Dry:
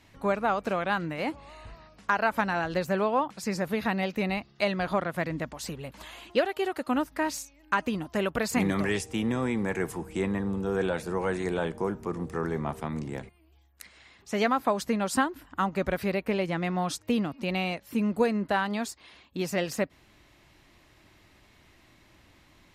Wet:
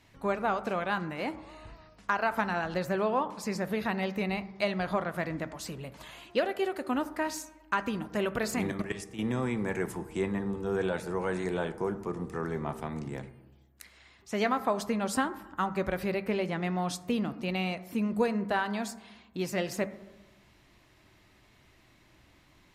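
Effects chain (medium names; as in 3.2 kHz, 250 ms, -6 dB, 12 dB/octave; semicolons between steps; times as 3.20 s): 8.55–9.19 s: level held to a coarse grid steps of 13 dB; on a send: reverberation RT60 1.1 s, pre-delay 4 ms, DRR 11 dB; on the sum: trim -3 dB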